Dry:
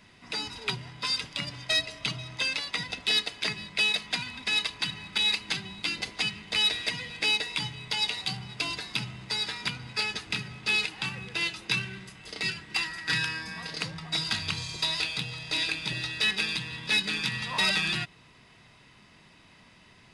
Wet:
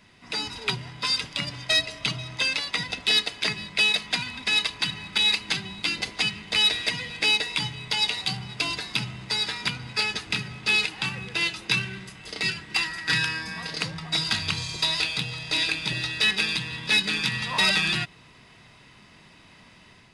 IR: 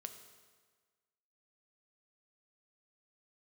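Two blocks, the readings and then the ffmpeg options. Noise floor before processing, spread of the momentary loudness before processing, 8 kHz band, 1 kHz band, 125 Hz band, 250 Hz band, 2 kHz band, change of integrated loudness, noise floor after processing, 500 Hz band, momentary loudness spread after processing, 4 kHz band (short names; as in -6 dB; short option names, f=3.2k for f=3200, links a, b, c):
-57 dBFS, 9 LU, +4.0 dB, +4.0 dB, +4.0 dB, +4.0 dB, +4.0 dB, +4.0 dB, -53 dBFS, +4.0 dB, 9 LU, +4.0 dB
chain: -af "dynaudnorm=f=190:g=3:m=4dB"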